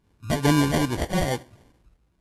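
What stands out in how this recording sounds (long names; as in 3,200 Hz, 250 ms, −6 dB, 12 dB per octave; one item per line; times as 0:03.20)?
phaser sweep stages 2, 2.4 Hz, lowest notch 450–1,400 Hz
aliases and images of a low sample rate 1,300 Hz, jitter 0%
Ogg Vorbis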